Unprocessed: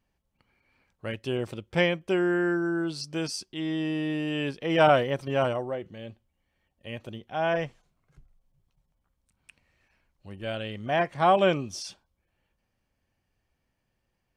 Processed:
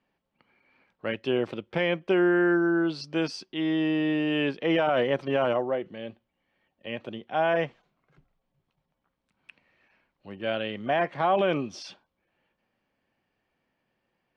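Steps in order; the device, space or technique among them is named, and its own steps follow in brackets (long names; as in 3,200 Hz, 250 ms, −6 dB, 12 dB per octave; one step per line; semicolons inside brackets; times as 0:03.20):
DJ mixer with the lows and highs turned down (three-way crossover with the lows and the highs turned down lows −18 dB, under 160 Hz, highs −24 dB, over 4,300 Hz; brickwall limiter −19 dBFS, peak gain reduction 11.5 dB)
level +4.5 dB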